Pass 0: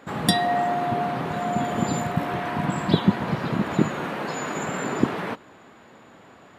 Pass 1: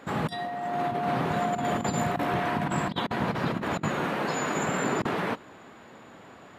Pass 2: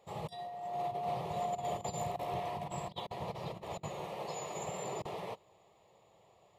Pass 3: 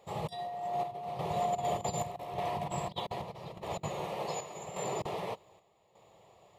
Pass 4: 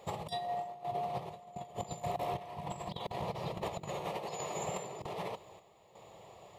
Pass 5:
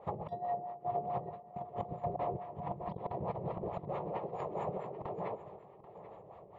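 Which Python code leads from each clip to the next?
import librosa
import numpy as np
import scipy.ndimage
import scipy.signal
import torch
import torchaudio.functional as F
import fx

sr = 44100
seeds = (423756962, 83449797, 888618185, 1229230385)

y1 = fx.over_compress(x, sr, threshold_db=-26.0, ratio=-0.5)
y1 = y1 * 10.0 ** (-1.5 / 20.0)
y2 = fx.fixed_phaser(y1, sr, hz=630.0, stages=4)
y2 = fx.upward_expand(y2, sr, threshold_db=-40.0, expansion=1.5)
y2 = y2 * 10.0 ** (-6.0 / 20.0)
y3 = fx.chopper(y2, sr, hz=0.84, depth_pct=60, duty_pct=70)
y3 = y3 * 10.0 ** (4.5 / 20.0)
y4 = fx.over_compress(y3, sr, threshold_db=-40.0, ratio=-0.5)
y4 = y4 * 10.0 ** (1.5 / 20.0)
y5 = fx.filter_lfo_lowpass(y4, sr, shape='sine', hz=4.6, low_hz=370.0, high_hz=1600.0, q=1.3)
y5 = fx.echo_feedback(y5, sr, ms=786, feedback_pct=34, wet_db=-15.0)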